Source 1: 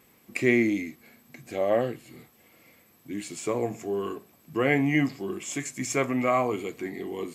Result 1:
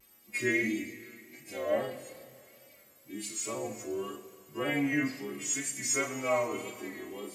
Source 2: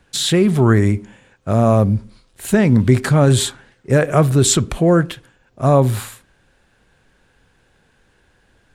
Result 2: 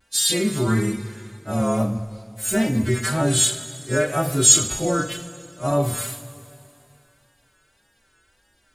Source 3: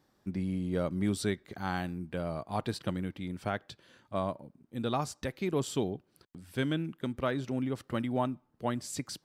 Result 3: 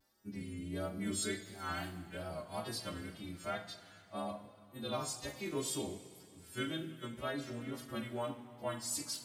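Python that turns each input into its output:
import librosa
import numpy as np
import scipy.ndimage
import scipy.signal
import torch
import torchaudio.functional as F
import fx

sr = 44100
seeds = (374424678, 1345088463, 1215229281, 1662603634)

y = fx.freq_snap(x, sr, grid_st=2)
y = fx.wow_flutter(y, sr, seeds[0], rate_hz=2.1, depth_cents=79.0)
y = fx.rev_double_slope(y, sr, seeds[1], early_s=0.3, late_s=2.6, knee_db=-18, drr_db=1.0)
y = F.gain(torch.from_numpy(y), -9.5).numpy()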